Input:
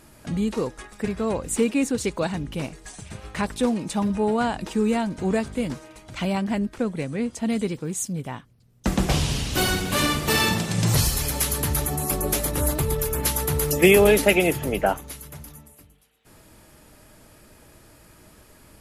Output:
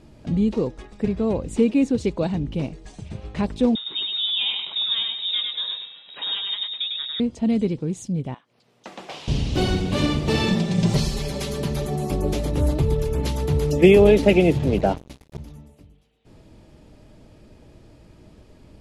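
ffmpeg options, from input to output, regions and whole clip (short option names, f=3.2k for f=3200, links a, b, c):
-filter_complex "[0:a]asettb=1/sr,asplit=3[a][b][c];[a]atrim=end=3.754[d];[b]atrim=start=3.75:end=7.2,asetpts=PTS-STARTPTS,afade=t=in:d=0.004:c=qsin,afade=t=out:st=3.446:d=0.004:c=qsin,aecho=1:1:101|202|303|404:0.668|0.221|0.0728|0.024,atrim=end_sample=152145,lowpass=f=3.3k:t=q:w=0.5098,lowpass=f=3.3k:t=q:w=0.6013,lowpass=f=3.3k:t=q:w=0.9,lowpass=f=3.3k:t=q:w=2.563,afreqshift=-3900,highpass=140[e];[c]atrim=start=7.196[f];[d][e]acrossfade=d=0.004:c1=hsin:c2=qsin[g];[g][f]acrossfade=d=0.004:c1=qsin:c2=hsin,asettb=1/sr,asplit=3[h][i][j];[h]atrim=end=8.344[k];[i]atrim=start=8.34:end=9.28,asetpts=PTS-STARTPTS,afade=t=in:d=0.004:c=qsin,afade=t=out:st=0.936:d=0.004:c=qsin,highpass=1k,equalizer=f=6.3k:t=o:w=2.7:g=-8,acompressor=mode=upward:threshold=-39dB:ratio=2.5:attack=3.2:release=140:knee=2.83:detection=peak[l];[j]atrim=start=9.276[m];[k][l]acrossfade=d=0.004:c1=hsin:c2=qsin[n];[n][m]acrossfade=d=0.004:c1=qsin:c2=hsin,asettb=1/sr,asplit=3[o][p][q];[o]atrim=end=10.484[r];[p]atrim=start=10.48:end=12.07,asetpts=PTS-STARTPTS,afade=t=in:d=0.004:c=qsin,afade=t=out:st=1.586:d=0.004:c=qsin,equalizer=f=63:w=0.79:g=-8.5,acrusher=bits=5:mode=log:mix=0:aa=0.000001,aecho=1:1:5.1:0.62,atrim=end_sample=70119[s];[q]atrim=start=12.066[t];[r][s]acrossfade=d=0.004:c1=hsin:c2=qsin[u];[u][t]acrossfade=d=0.004:c1=qsin:c2=hsin,asettb=1/sr,asplit=3[v][w][x];[v]atrim=end=14.224[y];[w]atrim=start=14.22:end=15.38,asetpts=PTS-STARTPTS,afade=t=in:d=0.004:c=qsin,afade=t=out:st=1.156:d=0.004:c=qsin,highpass=83,lowshelf=f=120:g=11,acrusher=bits=4:mix=0:aa=0.5[z];[x]atrim=start=15.376[aa];[y][z]acrossfade=d=0.004:c1=hsin:c2=qsin[ab];[ab][aa]acrossfade=d=0.004:c1=qsin:c2=hsin,lowpass=3.3k,equalizer=f=1.5k:t=o:w=1.8:g=-13.5,volume=5dB"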